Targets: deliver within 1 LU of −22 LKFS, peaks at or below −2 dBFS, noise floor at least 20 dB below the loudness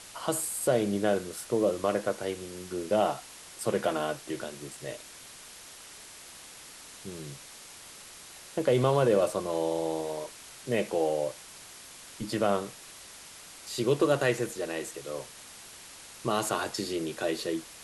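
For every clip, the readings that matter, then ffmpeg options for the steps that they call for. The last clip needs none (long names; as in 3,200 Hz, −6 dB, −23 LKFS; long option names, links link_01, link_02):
background noise floor −48 dBFS; target noise floor −50 dBFS; integrated loudness −30.0 LKFS; sample peak −12.5 dBFS; target loudness −22.0 LKFS
→ -af "afftdn=noise_reduction=6:noise_floor=-48"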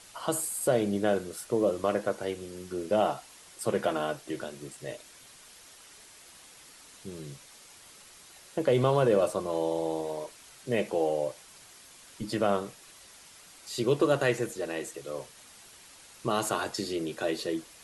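background noise floor −53 dBFS; integrated loudness −30.0 LKFS; sample peak −12.5 dBFS; target loudness −22.0 LKFS
→ -af "volume=8dB"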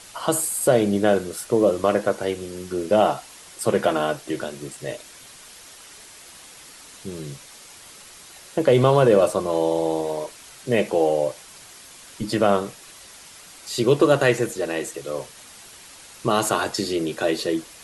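integrated loudness −22.0 LKFS; sample peak −4.5 dBFS; background noise floor −45 dBFS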